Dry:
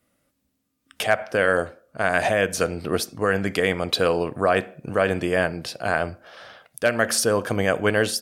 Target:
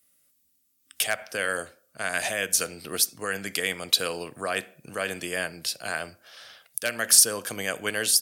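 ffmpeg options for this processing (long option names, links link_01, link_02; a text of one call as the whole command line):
ffmpeg -i in.wav -filter_complex "[0:a]acrossover=split=120|980[link_01][link_02][link_03];[link_01]acompressor=threshold=-46dB:ratio=6[link_04];[link_03]crystalizer=i=8:c=0[link_05];[link_04][link_02][link_05]amix=inputs=3:normalize=0,volume=-11.5dB" out.wav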